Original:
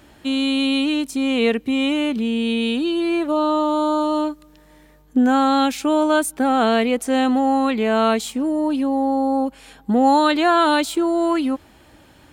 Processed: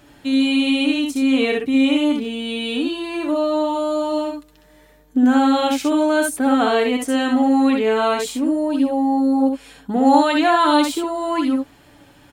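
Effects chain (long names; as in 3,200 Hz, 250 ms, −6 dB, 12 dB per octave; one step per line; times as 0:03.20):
comb filter 7 ms, depth 49%
on a send: ambience of single reflections 64 ms −4 dB, 75 ms −9.5 dB
on the sum: level −2 dB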